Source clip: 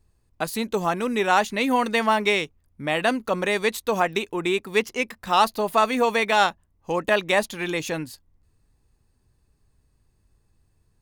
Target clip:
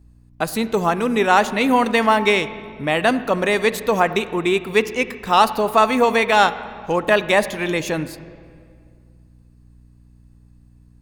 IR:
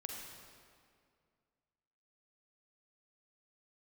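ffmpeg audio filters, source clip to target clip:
-filter_complex "[0:a]aeval=exprs='val(0)+0.00178*(sin(2*PI*60*n/s)+sin(2*PI*2*60*n/s)/2+sin(2*PI*3*60*n/s)/3+sin(2*PI*4*60*n/s)/4+sin(2*PI*5*60*n/s)/5)':c=same,asplit=2[s0][s1];[1:a]atrim=start_sample=2205,lowpass=3300,lowshelf=f=240:g=5.5[s2];[s1][s2]afir=irnorm=-1:irlink=0,volume=0.398[s3];[s0][s3]amix=inputs=2:normalize=0,volume=1.41"

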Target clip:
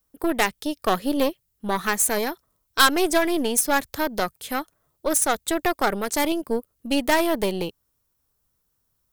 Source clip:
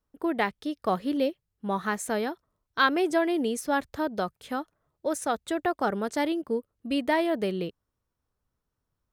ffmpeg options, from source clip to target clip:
-af "aeval=exprs='0.282*(cos(1*acos(clip(val(0)/0.282,-1,1)))-cos(1*PI/2))+0.0355*(cos(6*acos(clip(val(0)/0.282,-1,1)))-cos(6*PI/2))':c=same,aemphasis=mode=production:type=75kf,volume=1.41"

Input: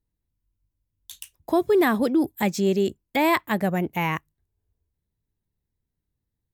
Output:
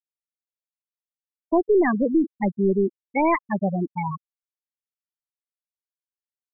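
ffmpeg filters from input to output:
-af "aeval=exprs='if(lt(val(0),0),0.708*val(0),val(0))':c=same,afftfilt=real='re*gte(hypot(re,im),0.251)':imag='im*gte(hypot(re,im),0.251)':win_size=1024:overlap=0.75,volume=1.33"

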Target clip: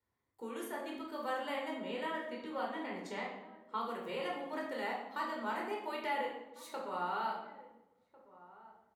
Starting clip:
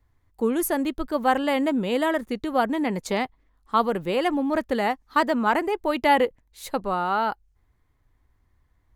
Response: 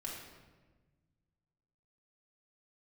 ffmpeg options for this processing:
-filter_complex "[0:a]asettb=1/sr,asplit=3[s0][s1][s2];[s0]atrim=end=1.714[s3];[s1]atrim=start=1.71:end=3.81,asetpts=PTS-STARTPTS,afade=t=in:d=0.004:c=qsin,afade=t=out:st=2.096:d=0.004:c=qsin,highshelf=f=6700:g=-12[s4];[s2]atrim=start=3.806[s5];[s3][s4]acrossfade=d=0.004:c1=hsin:c2=qsin[s6];[s6][s5]acrossfade=d=0.004:c1=qsin:c2=hsin,acrossover=split=770|2600[s7][s8][s9];[s7]acompressor=threshold=0.0178:ratio=4[s10];[s8]acompressor=threshold=0.0501:ratio=4[s11];[s9]acompressor=threshold=0.01:ratio=4[s12];[s10][s11][s12]amix=inputs=3:normalize=0,highpass=190,asplit=2[s13][s14];[s14]adelay=1399,volume=0.126,highshelf=f=4000:g=-31.5[s15];[s13][s15]amix=inputs=2:normalize=0[s16];[1:a]atrim=start_sample=2205,asetrate=70560,aresample=44100[s17];[s16][s17]afir=irnorm=-1:irlink=0,volume=0.562"

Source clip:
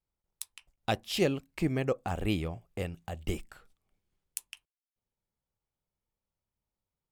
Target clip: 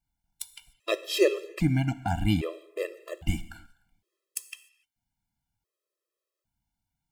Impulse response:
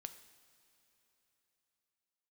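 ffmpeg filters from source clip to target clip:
-filter_complex "[0:a]asplit=2[s0][s1];[s1]equalizer=f=1000:t=o:w=0.48:g=-3.5[s2];[1:a]atrim=start_sample=2205,afade=t=out:st=0.36:d=0.01,atrim=end_sample=16317[s3];[s2][s3]afir=irnorm=-1:irlink=0,volume=3.55[s4];[s0][s4]amix=inputs=2:normalize=0,afftfilt=real='re*gt(sin(2*PI*0.62*pts/sr)*(1-2*mod(floor(b*sr/1024/340),2)),0)':imag='im*gt(sin(2*PI*0.62*pts/sr)*(1-2*mod(floor(b*sr/1024/340),2)),0)':win_size=1024:overlap=0.75,volume=0.75"

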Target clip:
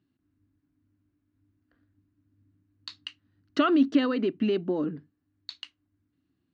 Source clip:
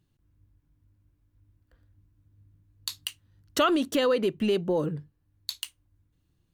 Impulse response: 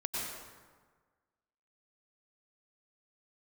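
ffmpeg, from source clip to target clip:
-af "highpass=150,equalizer=f=150:t=q:w=4:g=-7,equalizer=f=270:t=q:w=4:g=10,equalizer=f=510:t=q:w=4:g=-9,equalizer=f=920:t=q:w=4:g=-7,equalizer=f=2400:t=q:w=4:g=-3,equalizer=f=3400:t=q:w=4:g=-7,lowpass=f=4100:w=0.5412,lowpass=f=4100:w=1.3066"

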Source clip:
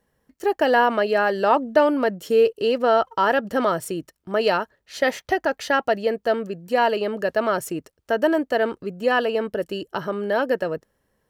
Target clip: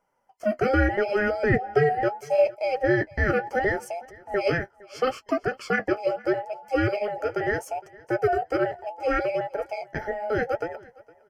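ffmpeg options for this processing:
-af "afftfilt=real='real(if(between(b,1,1008),(2*floor((b-1)/48)+1)*48-b,b),0)':imag='imag(if(between(b,1,1008),(2*floor((b-1)/48)+1)*48-b,b),0)*if(between(b,1,1008),-1,1)':win_size=2048:overlap=0.75,flanger=delay=6.2:depth=7.9:regen=-38:speed=0.74:shape=sinusoidal,asuperstop=centerf=3800:order=4:qfactor=3.7,highshelf=f=10000:g=-12,aecho=1:1:461|922:0.0708|0.0156"

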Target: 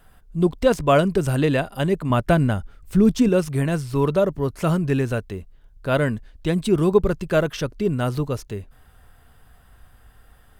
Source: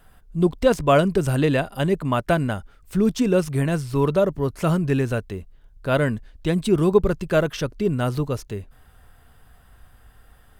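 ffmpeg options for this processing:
-filter_complex "[0:a]asettb=1/sr,asplit=3[s0][s1][s2];[s0]atrim=end=2.104[s3];[s1]atrim=start=2.1:end=3.29,asetpts=PTS-STARTPTS,afade=t=in:d=0.004:c=qsin,afade=t=out:st=1.186:d=0.004:c=qsin,lowshelf=f=250:g=7[s4];[s2]atrim=start=3.286[s5];[s3][s4]acrossfade=d=0.004:c1=hsin:c2=qsin[s6];[s6][s5]acrossfade=d=0.004:c1=qsin:c2=hsin"

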